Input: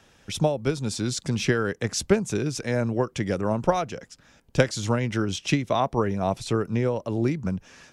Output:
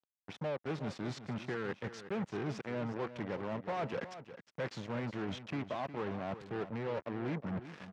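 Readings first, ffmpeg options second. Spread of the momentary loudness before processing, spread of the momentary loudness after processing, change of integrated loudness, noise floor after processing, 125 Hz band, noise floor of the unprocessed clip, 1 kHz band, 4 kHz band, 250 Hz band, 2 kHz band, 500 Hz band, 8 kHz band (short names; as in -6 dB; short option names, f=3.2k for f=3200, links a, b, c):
5 LU, 4 LU, -13.5 dB, under -85 dBFS, -15.0 dB, -58 dBFS, -12.5 dB, -17.0 dB, -13.0 dB, -12.0 dB, -13.0 dB, -26.5 dB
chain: -af "areverse,acompressor=threshold=-37dB:ratio=12,areverse,acrusher=bits=6:mix=0:aa=0.5,asoftclip=type=hard:threshold=-37dB,highpass=120,lowpass=2.5k,aecho=1:1:361:0.237,volume=5dB"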